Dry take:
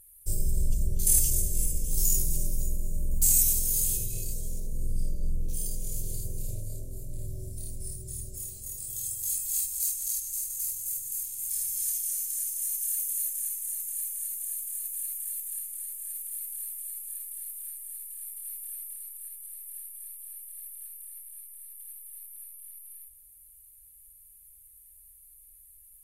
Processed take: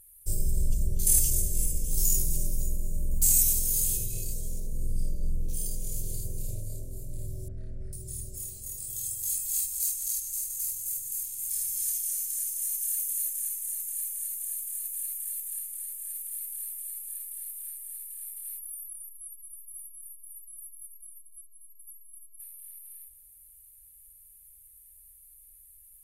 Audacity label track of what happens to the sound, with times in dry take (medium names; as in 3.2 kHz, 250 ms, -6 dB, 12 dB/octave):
7.480000	7.930000	resonant low-pass 1.5 kHz, resonance Q 5
18.590000	22.400000	spectral contrast enhancement exponent 3.7